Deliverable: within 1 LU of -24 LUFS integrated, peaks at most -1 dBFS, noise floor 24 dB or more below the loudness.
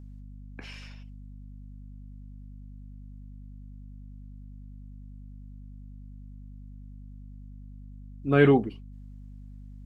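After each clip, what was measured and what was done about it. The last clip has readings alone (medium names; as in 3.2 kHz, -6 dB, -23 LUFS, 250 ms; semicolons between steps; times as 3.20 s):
hum 50 Hz; highest harmonic 250 Hz; hum level -42 dBFS; loudness -23.5 LUFS; peak level -7.5 dBFS; loudness target -24.0 LUFS
-> de-hum 50 Hz, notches 5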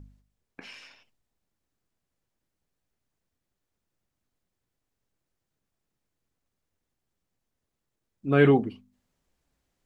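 hum not found; loudness -22.0 LUFS; peak level -7.5 dBFS; loudness target -24.0 LUFS
-> trim -2 dB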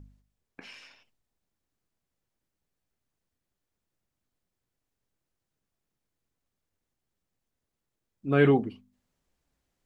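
loudness -24.0 LUFS; peak level -9.5 dBFS; noise floor -85 dBFS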